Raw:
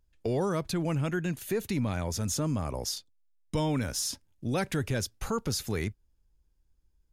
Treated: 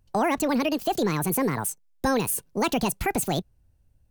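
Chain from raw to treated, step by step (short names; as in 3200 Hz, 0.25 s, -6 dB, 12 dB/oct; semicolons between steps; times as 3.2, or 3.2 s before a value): speed mistake 45 rpm record played at 78 rpm; gain +5.5 dB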